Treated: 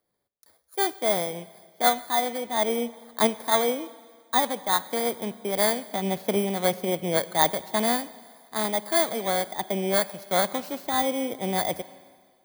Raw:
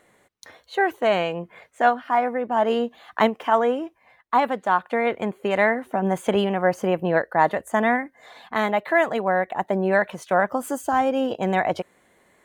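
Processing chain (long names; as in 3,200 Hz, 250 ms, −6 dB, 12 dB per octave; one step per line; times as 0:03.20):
samples in bit-reversed order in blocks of 16 samples
four-comb reverb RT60 3.2 s, combs from 30 ms, DRR 15.5 dB
multiband upward and downward expander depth 40%
level −4 dB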